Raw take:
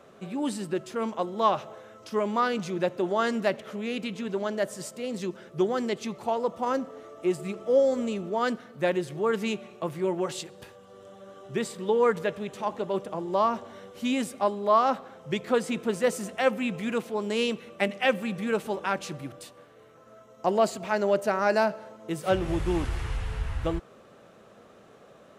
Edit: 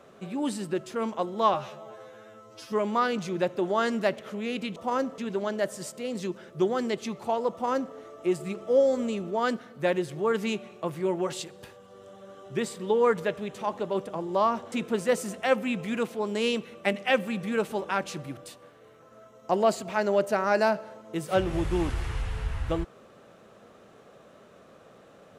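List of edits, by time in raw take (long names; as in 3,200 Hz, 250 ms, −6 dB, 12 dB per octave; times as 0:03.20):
0:01.54–0:02.13: time-stretch 2×
0:06.51–0:06.93: duplicate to 0:04.17
0:13.71–0:15.67: remove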